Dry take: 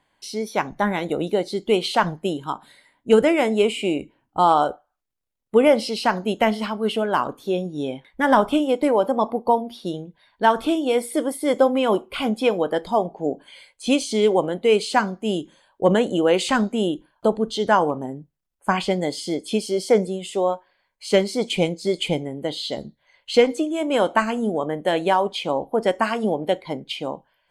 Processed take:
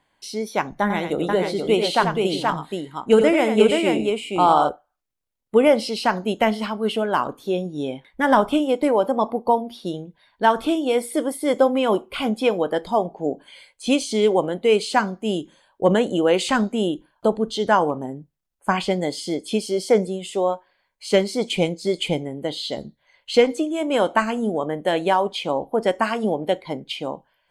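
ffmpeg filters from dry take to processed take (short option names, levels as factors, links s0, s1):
-filter_complex "[0:a]asettb=1/sr,asplit=3[s0][s1][s2];[s0]atrim=end=0.814[s3];[s1]atrim=start=0.81:end=4.69,asetpts=PTS-STARTPTS,afade=t=in:d=0.004:c=qsin,afade=t=out:st=3.876:d=0.004:c=qsin,aecho=1:1:88|477:0.422|0.631,atrim=end_sample=171108[s4];[s2]atrim=start=4.686[s5];[s3][s4]acrossfade=d=0.004:c1=hsin:c2=qsin[s6];[s6][s5]acrossfade=d=0.004:c1=qsin:c2=hsin"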